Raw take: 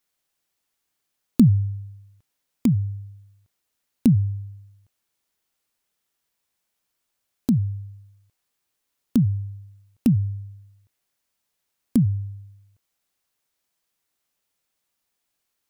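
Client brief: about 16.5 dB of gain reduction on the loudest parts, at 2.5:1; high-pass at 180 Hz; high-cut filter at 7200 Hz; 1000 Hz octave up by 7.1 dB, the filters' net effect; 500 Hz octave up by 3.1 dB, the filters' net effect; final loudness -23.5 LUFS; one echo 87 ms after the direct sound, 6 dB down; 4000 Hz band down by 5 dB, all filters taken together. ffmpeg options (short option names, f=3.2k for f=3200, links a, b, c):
-af "highpass=180,lowpass=7.2k,equalizer=f=500:t=o:g=3,equalizer=f=1k:t=o:g=8.5,equalizer=f=4k:t=o:g=-6.5,acompressor=threshold=-37dB:ratio=2.5,aecho=1:1:87:0.501,volume=15.5dB"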